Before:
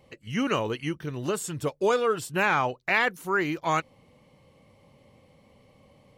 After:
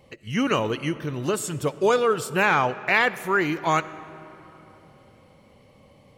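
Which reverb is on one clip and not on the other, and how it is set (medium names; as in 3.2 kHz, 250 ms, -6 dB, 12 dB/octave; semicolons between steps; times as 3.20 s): algorithmic reverb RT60 3.5 s, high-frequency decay 0.6×, pre-delay 25 ms, DRR 15.5 dB; trim +3.5 dB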